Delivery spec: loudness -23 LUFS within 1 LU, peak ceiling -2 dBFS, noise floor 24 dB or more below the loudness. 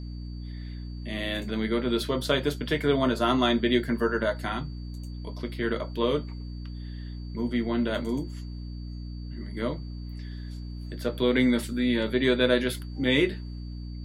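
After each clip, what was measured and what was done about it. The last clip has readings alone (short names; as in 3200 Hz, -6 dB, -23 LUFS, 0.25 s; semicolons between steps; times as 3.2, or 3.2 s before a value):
hum 60 Hz; harmonics up to 300 Hz; hum level -34 dBFS; steady tone 4600 Hz; tone level -54 dBFS; loudness -27.0 LUFS; peak -9.5 dBFS; loudness target -23.0 LUFS
-> notches 60/120/180/240/300 Hz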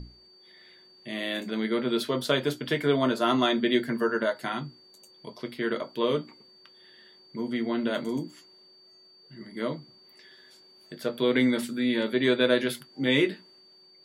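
hum none; steady tone 4600 Hz; tone level -54 dBFS
-> notch 4600 Hz, Q 30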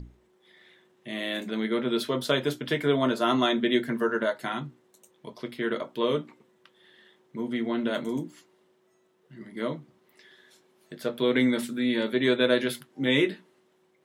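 steady tone none; loudness -27.5 LUFS; peak -10.0 dBFS; loudness target -23.0 LUFS
-> gain +4.5 dB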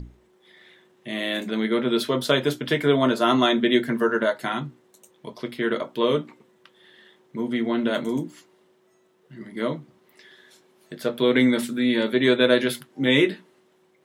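loudness -23.0 LUFS; peak -5.5 dBFS; noise floor -62 dBFS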